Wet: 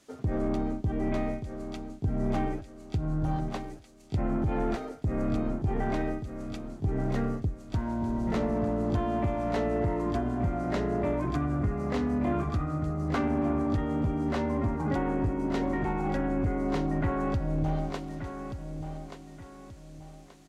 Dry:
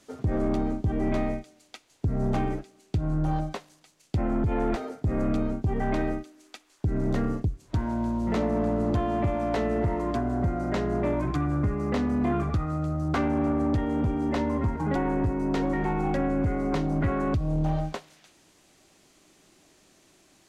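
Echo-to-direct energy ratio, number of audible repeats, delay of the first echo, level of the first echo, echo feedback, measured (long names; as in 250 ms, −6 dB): −8.5 dB, 3, 1,180 ms, −9.0 dB, 34%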